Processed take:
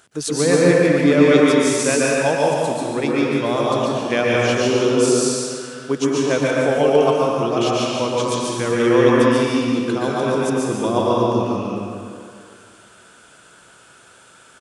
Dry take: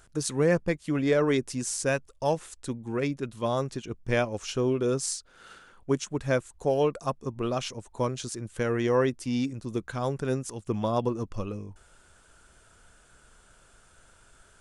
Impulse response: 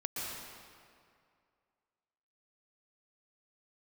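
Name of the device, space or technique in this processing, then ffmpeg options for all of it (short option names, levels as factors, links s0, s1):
PA in a hall: -filter_complex "[0:a]highpass=170,equalizer=f=3200:t=o:w=0.89:g=4,aecho=1:1:144:0.562[s0];[1:a]atrim=start_sample=2205[s1];[s0][s1]afir=irnorm=-1:irlink=0,volume=2.24"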